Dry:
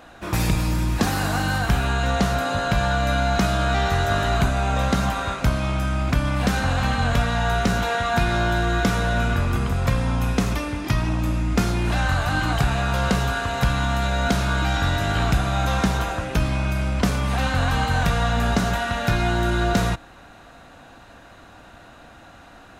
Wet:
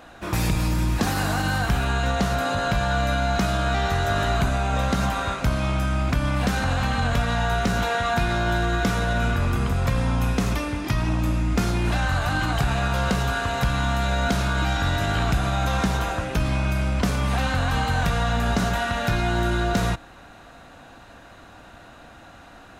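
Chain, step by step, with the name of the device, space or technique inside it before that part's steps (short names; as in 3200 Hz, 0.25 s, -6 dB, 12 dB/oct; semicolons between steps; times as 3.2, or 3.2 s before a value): clipper into limiter (hard clip -11.5 dBFS, distortion -40 dB; limiter -14 dBFS, peak gain reduction 2.5 dB)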